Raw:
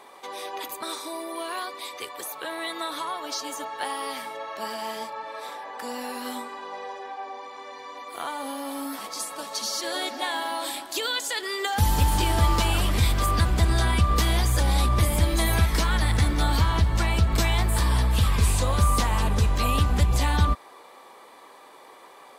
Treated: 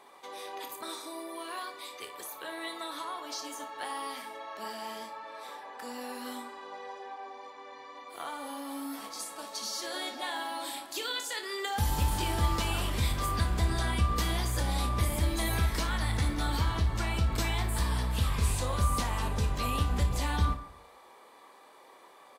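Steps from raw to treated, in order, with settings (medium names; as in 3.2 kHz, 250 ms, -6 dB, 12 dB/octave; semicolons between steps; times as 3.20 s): 7.50–8.09 s: treble shelf 6.9 kHz -> 10 kHz -11.5 dB; early reflections 28 ms -9 dB, 58 ms -12 dB; reverberation RT60 0.60 s, pre-delay 87 ms, DRR 15 dB; trim -7.5 dB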